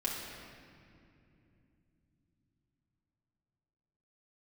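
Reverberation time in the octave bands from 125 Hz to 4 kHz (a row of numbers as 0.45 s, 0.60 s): 5.6 s, 4.9 s, 3.1 s, 2.3 s, 2.4 s, 1.7 s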